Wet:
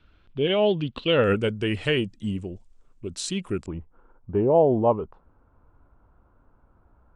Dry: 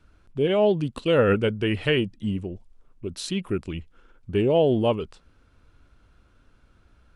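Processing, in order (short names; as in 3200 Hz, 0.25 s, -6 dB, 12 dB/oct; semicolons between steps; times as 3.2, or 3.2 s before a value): synth low-pass 3400 Hz, resonance Q 2.5, from 1.24 s 7800 Hz, from 3.66 s 940 Hz; gain -1.5 dB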